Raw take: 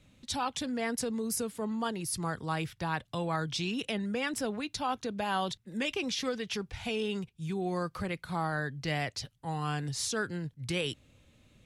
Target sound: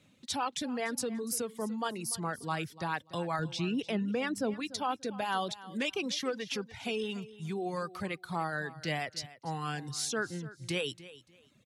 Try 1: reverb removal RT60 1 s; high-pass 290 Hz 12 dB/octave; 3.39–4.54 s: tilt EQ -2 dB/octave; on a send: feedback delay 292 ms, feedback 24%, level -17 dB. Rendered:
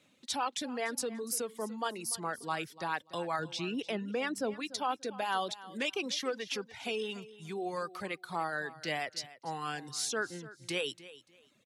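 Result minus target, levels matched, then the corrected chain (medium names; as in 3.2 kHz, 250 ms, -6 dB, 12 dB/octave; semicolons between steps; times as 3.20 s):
125 Hz band -7.0 dB
reverb removal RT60 1 s; high-pass 140 Hz 12 dB/octave; 3.39–4.54 s: tilt EQ -2 dB/octave; on a send: feedback delay 292 ms, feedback 24%, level -17 dB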